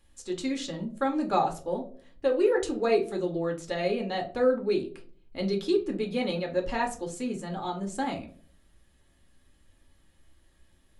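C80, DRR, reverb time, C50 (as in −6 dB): 18.0 dB, 2.0 dB, non-exponential decay, 13.0 dB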